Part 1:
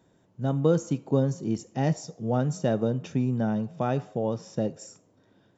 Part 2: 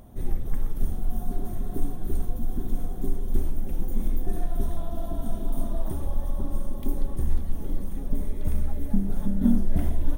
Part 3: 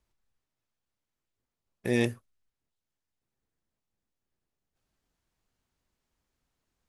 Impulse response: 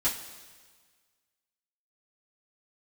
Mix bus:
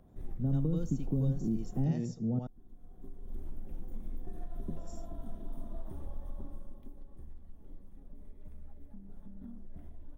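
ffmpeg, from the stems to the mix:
-filter_complex "[0:a]volume=1.5dB,asplit=3[a][b][c];[a]atrim=end=2.39,asetpts=PTS-STARTPTS,afade=t=out:st=2.386:d=0.004:c=hsin[d];[b]atrim=start=2.39:end=4.68,asetpts=PTS-STARTPTS,volume=0[e];[c]atrim=start=4.68,asetpts=PTS-STARTPTS,afade=t=in:d=0.004:c=hsin[f];[d][e][f]concat=n=3:v=0:a=1,asplit=2[g][h];[h]volume=-15dB[i];[1:a]highshelf=f=3.7k:g=-10.5,alimiter=limit=-16dB:level=0:latency=1:release=143,aeval=exprs='0.158*(cos(1*acos(clip(val(0)/0.158,-1,1)))-cos(1*PI/2))+0.00316*(cos(8*acos(clip(val(0)/0.158,-1,1)))-cos(8*PI/2))':c=same,volume=-12.5dB,afade=t=out:st=6.36:d=0.56:silence=0.375837[j];[2:a]volume=-2.5dB,asplit=2[k][l];[l]apad=whole_len=448690[m];[j][m]sidechaincompress=threshold=-58dB:ratio=3:attack=16:release=609[n];[g][k]amix=inputs=2:normalize=0,bandpass=f=190:t=q:w=1.2:csg=0,acompressor=threshold=-26dB:ratio=6,volume=0dB[o];[i]aecho=0:1:81:1[p];[n][o][p]amix=inputs=3:normalize=0,acrossover=split=300|3000[q][r][s];[r]acompressor=threshold=-45dB:ratio=3[t];[q][t][s]amix=inputs=3:normalize=0"

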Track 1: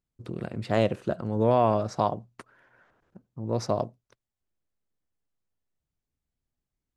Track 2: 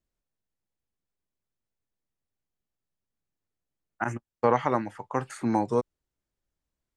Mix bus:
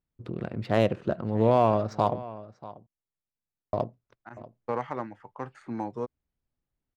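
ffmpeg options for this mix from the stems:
-filter_complex "[0:a]volume=0.5dB,asplit=3[a][b][c];[a]atrim=end=2.23,asetpts=PTS-STARTPTS,afade=t=out:st=2.226:d=0.004:c=hsin[d];[b]atrim=start=2.23:end=3.73,asetpts=PTS-STARTPTS,volume=0[e];[c]atrim=start=3.73,asetpts=PTS-STARTPTS,afade=t=in:d=0.004:c=hsin[f];[d][e][f]concat=n=3:v=0:a=1,asplit=3[g][h][i];[h]volume=-17.5dB[j];[1:a]adelay=250,volume=-8dB[k];[i]apad=whole_len=317967[l];[k][l]sidechaincompress=threshold=-44dB:ratio=4:attack=6.1:release=502[m];[j]aecho=0:1:638:1[n];[g][m][n]amix=inputs=3:normalize=0,adynamicsmooth=sensitivity=6.5:basefreq=3.5k"

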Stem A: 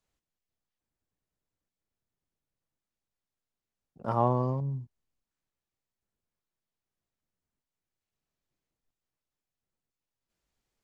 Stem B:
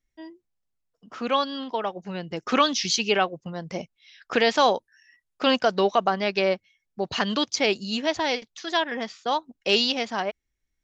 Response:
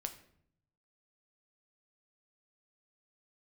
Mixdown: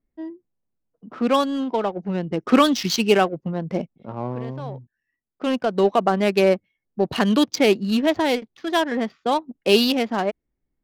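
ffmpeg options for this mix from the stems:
-filter_complex "[0:a]volume=-8.5dB,asplit=2[a][b];[1:a]volume=0.5dB[c];[b]apad=whole_len=477994[d];[c][d]sidechaincompress=threshold=-52dB:ratio=8:attack=11:release=1060[e];[a][e]amix=inputs=2:normalize=0,equalizer=f=250:t=o:w=2.4:g=9.5,adynamicsmooth=sensitivity=3.5:basefreq=1.6k"

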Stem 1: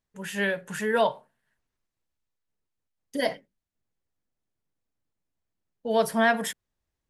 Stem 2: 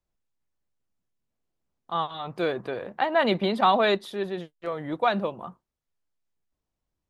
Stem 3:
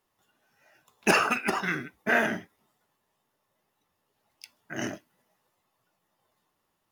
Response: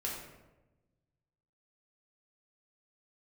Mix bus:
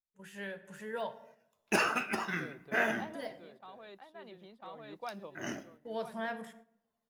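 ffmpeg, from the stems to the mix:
-filter_complex "[0:a]deesser=0.85,volume=-16.5dB,asplit=3[a][b][c];[b]volume=-11dB[d];[1:a]volume=-18.5dB,asplit=2[e][f];[f]volume=-11dB[g];[2:a]flanger=delay=8.6:depth=6.1:regen=57:speed=1.3:shape=sinusoidal,adelay=650,volume=-3.5dB,asplit=2[h][i];[i]volume=-14.5dB[j];[c]apad=whole_len=313059[k];[e][k]sidechaincompress=threshold=-54dB:ratio=10:attack=16:release=1450[l];[3:a]atrim=start_sample=2205[m];[d][j]amix=inputs=2:normalize=0[n];[n][m]afir=irnorm=-1:irlink=0[o];[g]aecho=0:1:999:1[p];[a][l][h][o][p]amix=inputs=5:normalize=0,agate=range=-9dB:threshold=-56dB:ratio=16:detection=peak"

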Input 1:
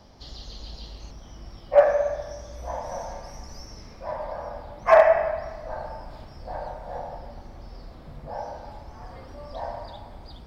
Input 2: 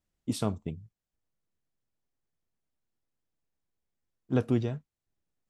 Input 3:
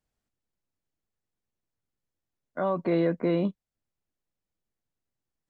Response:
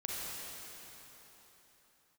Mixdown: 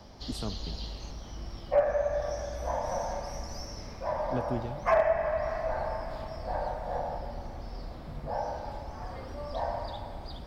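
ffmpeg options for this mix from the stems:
-filter_complex "[0:a]volume=0.5dB,asplit=2[a][b];[b]volume=-14dB[c];[1:a]volume=-7dB[d];[3:a]atrim=start_sample=2205[e];[c][e]afir=irnorm=-1:irlink=0[f];[a][d][f]amix=inputs=3:normalize=0,acrossover=split=290[g][h];[h]acompressor=threshold=-28dB:ratio=2.5[i];[g][i]amix=inputs=2:normalize=0"

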